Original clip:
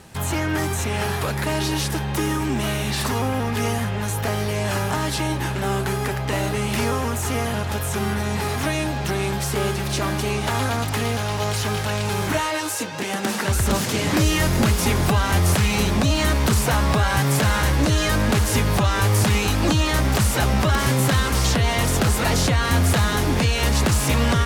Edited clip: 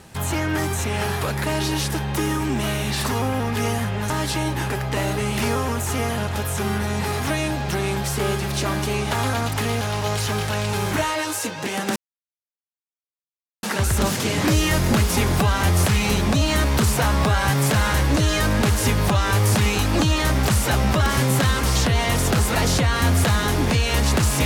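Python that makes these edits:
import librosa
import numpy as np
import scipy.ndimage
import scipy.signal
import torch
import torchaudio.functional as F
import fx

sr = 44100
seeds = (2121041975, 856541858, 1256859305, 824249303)

y = fx.edit(x, sr, fx.cut(start_s=4.1, length_s=0.84),
    fx.cut(start_s=5.54, length_s=0.52),
    fx.insert_silence(at_s=13.32, length_s=1.67), tone=tone)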